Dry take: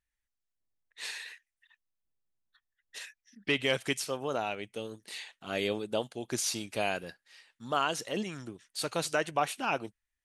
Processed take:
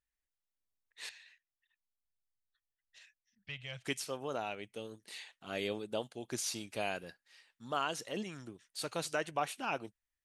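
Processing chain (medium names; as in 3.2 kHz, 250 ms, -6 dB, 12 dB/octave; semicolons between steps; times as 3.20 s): 1.09–3.85 s: FFT filter 130 Hz 0 dB, 330 Hz -29 dB, 630 Hz -11 dB, 930 Hz -15 dB, 2.6 kHz -8 dB, 4.2 kHz -10 dB, 7 kHz -12 dB, 10 kHz -24 dB; trim -5.5 dB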